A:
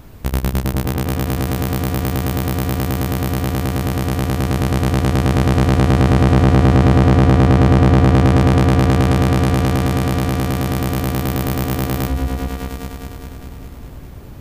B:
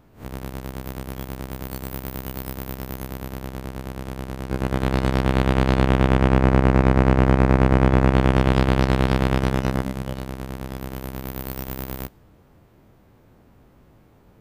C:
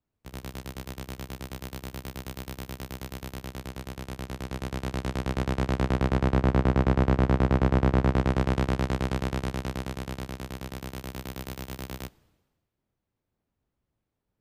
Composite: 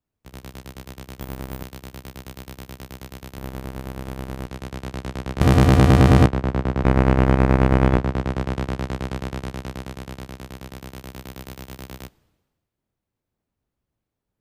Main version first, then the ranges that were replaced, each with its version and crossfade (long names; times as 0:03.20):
C
0:01.21–0:01.63: punch in from B
0:03.38–0:04.46: punch in from B
0:05.41–0:06.26: punch in from A
0:06.84–0:07.97: punch in from B